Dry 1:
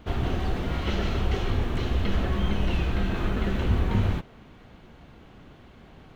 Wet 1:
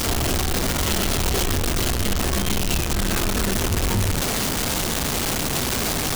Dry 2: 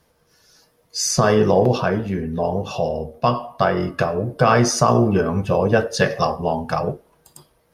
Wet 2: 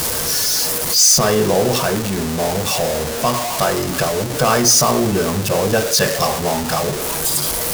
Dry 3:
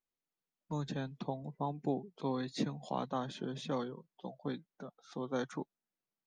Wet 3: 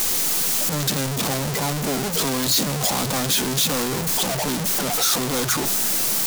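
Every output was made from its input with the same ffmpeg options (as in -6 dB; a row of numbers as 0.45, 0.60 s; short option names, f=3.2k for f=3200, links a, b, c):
-af "aeval=exprs='val(0)+0.5*0.15*sgn(val(0))':c=same,bass=f=250:g=-1,treble=f=4k:g=10,bandreject=f=60:t=h:w=6,bandreject=f=120:t=h:w=6,bandreject=f=180:t=h:w=6,volume=-2.5dB"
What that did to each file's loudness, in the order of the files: +5.5, +3.5, +19.5 LU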